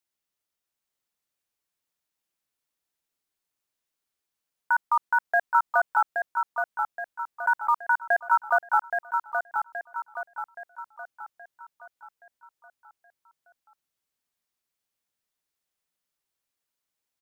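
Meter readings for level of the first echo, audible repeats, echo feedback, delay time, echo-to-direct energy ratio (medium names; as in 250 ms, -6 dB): -5.5 dB, 5, 47%, 823 ms, -4.5 dB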